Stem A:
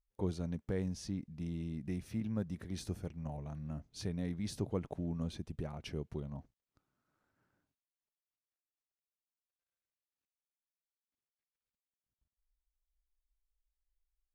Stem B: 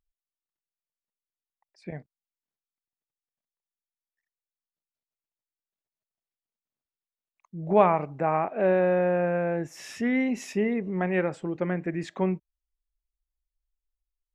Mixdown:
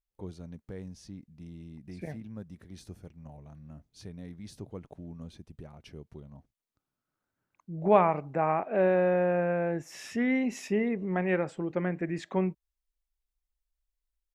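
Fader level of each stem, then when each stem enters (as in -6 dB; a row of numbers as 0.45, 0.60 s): -5.5, -2.0 dB; 0.00, 0.15 s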